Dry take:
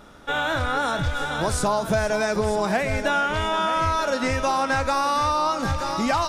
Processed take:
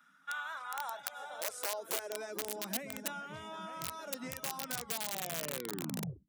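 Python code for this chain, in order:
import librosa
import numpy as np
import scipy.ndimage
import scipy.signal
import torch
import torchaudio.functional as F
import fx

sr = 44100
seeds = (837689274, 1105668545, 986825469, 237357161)

y = fx.tape_stop_end(x, sr, length_s=1.65)
y = fx.dereverb_blind(y, sr, rt60_s=0.55)
y = fx.high_shelf(y, sr, hz=2800.0, db=-10.5)
y = fx.notch(y, sr, hz=4400.0, q=9.3)
y = (np.mod(10.0 ** (16.0 / 20.0) * y + 1.0, 2.0) - 1.0) / 10.0 ** (16.0 / 20.0)
y = fx.filter_sweep_highpass(y, sr, from_hz=1500.0, to_hz=160.0, start_s=0.09, end_s=3.28, q=3.7)
y = fx.dmg_noise_band(y, sr, seeds[0], low_hz=160.0, high_hz=280.0, level_db=-58.0)
y = F.preemphasis(torch.from_numpy(y), 0.8).numpy()
y = y * librosa.db_to_amplitude(-7.0)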